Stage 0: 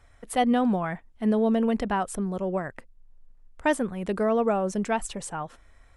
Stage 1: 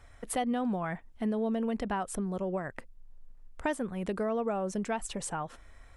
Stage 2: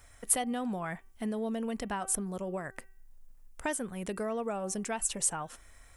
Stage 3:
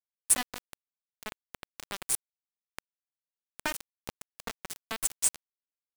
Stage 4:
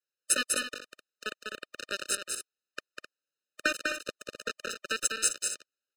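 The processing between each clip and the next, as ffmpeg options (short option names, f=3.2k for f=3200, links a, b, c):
-af "acompressor=threshold=-35dB:ratio=2.5,volume=2dB"
-af "equalizer=f=3.9k:t=o:w=0.77:g=-3.5,bandreject=f=384.7:t=h:w=4,bandreject=f=769.4:t=h:w=4,bandreject=f=1.1541k:t=h:w=4,bandreject=f=1.5388k:t=h:w=4,bandreject=f=1.9235k:t=h:w=4,bandreject=f=2.3082k:t=h:w=4,bandreject=f=2.6929k:t=h:w=4,bandreject=f=3.0776k:t=h:w=4,crystalizer=i=4:c=0,volume=-3.5dB"
-af "aeval=exprs='val(0)*gte(abs(val(0)),0.0473)':c=same,volume=4dB"
-filter_complex "[0:a]acrossover=split=320 7600:gain=0.126 1 0.112[a][b][c];[a][b][c]amix=inputs=3:normalize=0,aecho=1:1:198.3|259.5:0.631|0.316,afftfilt=real='re*eq(mod(floor(b*sr/1024/610),2),0)':imag='im*eq(mod(floor(b*sr/1024/610),2),0)':win_size=1024:overlap=0.75,volume=8.5dB"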